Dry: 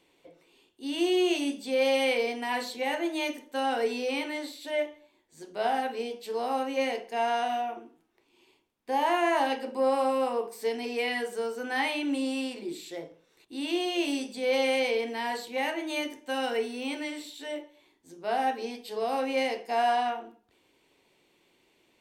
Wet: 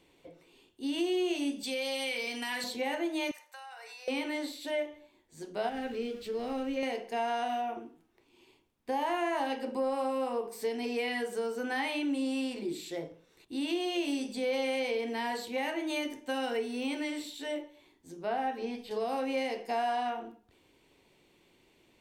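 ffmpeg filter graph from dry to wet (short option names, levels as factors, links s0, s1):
-filter_complex "[0:a]asettb=1/sr,asplit=3[s0][s1][s2];[s0]atrim=end=1.634[s3];[s1]atrim=start=1.63:end=2.64,asetpts=PTS-STARTPTS,afade=t=in:d=0.004:c=qsin,afade=t=out:st=1.006:d=0.004:c=qsin,tiltshelf=f=1400:g=-7.5,aecho=1:1:3.5:0.31,atrim=end_sample=44541,acompressor=threshold=0.0251:ratio=2:attack=3.2:release=140:knee=1:detection=peak[s4];[s2]atrim=start=2.636[s5];[s3][s4]acrossfade=d=0.004:c1=hsin:c2=qsin[s6];[s6][s5]acrossfade=d=0.004:c1=qsin:c2=hsin,asettb=1/sr,asplit=3[s7][s8][s9];[s7]atrim=end=3.314[s10];[s8]atrim=start=3.31:end=4.08,asetpts=PTS-STARTPTS,afade=t=in:d=0.004:c=qsin,afade=t=out:st=0.766:d=0.004:c=qsin,highpass=f=830:w=0.5412,highpass=f=830:w=1.3066,bandreject=f=3200:w=5,acompressor=threshold=0.00631:ratio=10:attack=3.2:release=140:knee=1:detection=peak[s11];[s9]atrim=start=4.076[s12];[s10][s11]acrossfade=d=0.004:c1=hsin:c2=qsin[s13];[s13][s12]acrossfade=d=0.004:c1=qsin:c2=hsin,asettb=1/sr,asplit=3[s14][s15][s16];[s14]atrim=end=5.694[s17];[s15]atrim=start=5.69:end=6.83,asetpts=PTS-STARTPTS,afade=t=in:d=0.004:c=qsin,afade=t=out:st=1.136:d=0.004:c=qsin,aeval=exprs='val(0)+0.5*0.00794*sgn(val(0))':c=same,lowpass=f=2700:p=1,equalizer=f=890:w=1.2:g=-12.5[s18];[s16]atrim=start=6.826[s19];[s17][s18]acrossfade=d=0.004:c1=hsin:c2=qsin[s20];[s20][s19]acrossfade=d=0.004:c1=qsin:c2=hsin,asettb=1/sr,asplit=3[s21][s22][s23];[s21]atrim=end=18.174[s24];[s22]atrim=start=18.17:end=18.91,asetpts=PTS-STARTPTS,afade=t=in:d=0.004:c=qsin,afade=t=out:st=0.736:d=0.004:c=qsin,acrossover=split=3300[s25][s26];[s26]acompressor=threshold=0.00178:ratio=4:attack=1:release=60[s27];[s25][s27]amix=inputs=2:normalize=0,asubboost=boost=7.5:cutoff=170[s28];[s23]atrim=start=18.906[s29];[s24][s28]acrossfade=d=0.004:c1=hsin:c2=qsin[s30];[s30][s29]acrossfade=d=0.004:c1=qsin:c2=hsin,lowshelf=f=180:g=10,acompressor=threshold=0.0282:ratio=2.5"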